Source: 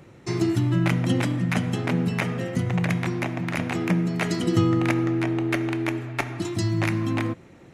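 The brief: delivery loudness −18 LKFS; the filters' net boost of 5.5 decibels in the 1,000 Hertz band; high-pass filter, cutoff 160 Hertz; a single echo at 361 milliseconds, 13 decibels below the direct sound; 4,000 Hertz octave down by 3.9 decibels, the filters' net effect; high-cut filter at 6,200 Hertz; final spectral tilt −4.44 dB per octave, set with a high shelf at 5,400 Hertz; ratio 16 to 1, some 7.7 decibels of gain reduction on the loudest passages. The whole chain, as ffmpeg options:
ffmpeg -i in.wav -af "highpass=160,lowpass=6200,equalizer=frequency=1000:width_type=o:gain=7.5,equalizer=frequency=4000:width_type=o:gain=-4,highshelf=frequency=5400:gain=-3.5,acompressor=threshold=-25dB:ratio=16,aecho=1:1:361:0.224,volume=12dB" out.wav

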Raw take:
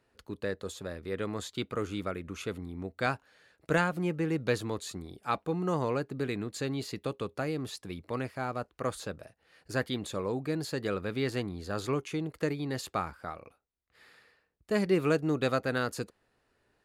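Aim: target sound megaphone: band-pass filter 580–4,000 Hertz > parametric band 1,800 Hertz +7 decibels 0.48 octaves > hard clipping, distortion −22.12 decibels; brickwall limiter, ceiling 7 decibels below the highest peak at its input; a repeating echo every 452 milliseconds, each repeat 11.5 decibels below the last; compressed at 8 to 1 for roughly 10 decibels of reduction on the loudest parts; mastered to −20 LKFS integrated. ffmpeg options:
ffmpeg -i in.wav -af "acompressor=threshold=-32dB:ratio=8,alimiter=level_in=2.5dB:limit=-24dB:level=0:latency=1,volume=-2.5dB,highpass=580,lowpass=4000,equalizer=frequency=1800:width_type=o:width=0.48:gain=7,aecho=1:1:452|904|1356:0.266|0.0718|0.0194,asoftclip=type=hard:threshold=-31dB,volume=23.5dB" out.wav

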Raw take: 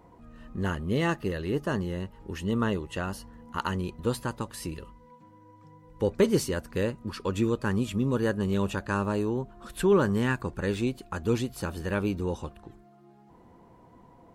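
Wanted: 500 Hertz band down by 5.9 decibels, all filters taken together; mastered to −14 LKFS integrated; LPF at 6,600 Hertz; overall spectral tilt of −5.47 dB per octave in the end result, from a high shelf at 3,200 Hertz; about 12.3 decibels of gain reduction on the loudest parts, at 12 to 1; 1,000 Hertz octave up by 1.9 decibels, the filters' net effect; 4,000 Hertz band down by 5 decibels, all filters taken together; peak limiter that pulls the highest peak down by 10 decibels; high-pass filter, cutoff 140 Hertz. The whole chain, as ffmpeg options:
ffmpeg -i in.wav -af "highpass=140,lowpass=6600,equalizer=frequency=500:width_type=o:gain=-8.5,equalizer=frequency=1000:width_type=o:gain=5,highshelf=frequency=3200:gain=-4,equalizer=frequency=4000:width_type=o:gain=-4,acompressor=threshold=-34dB:ratio=12,volume=30dB,alimiter=limit=-2dB:level=0:latency=1" out.wav

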